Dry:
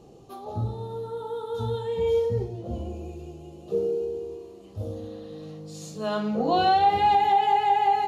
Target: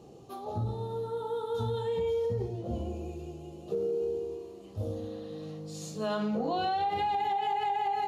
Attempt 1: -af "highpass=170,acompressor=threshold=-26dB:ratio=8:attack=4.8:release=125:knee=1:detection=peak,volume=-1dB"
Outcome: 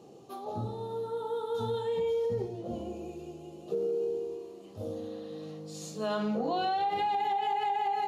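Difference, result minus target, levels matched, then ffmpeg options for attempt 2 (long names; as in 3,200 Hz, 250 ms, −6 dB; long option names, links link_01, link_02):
125 Hz band −5.5 dB
-af "highpass=61,acompressor=threshold=-26dB:ratio=8:attack=4.8:release=125:knee=1:detection=peak,volume=-1dB"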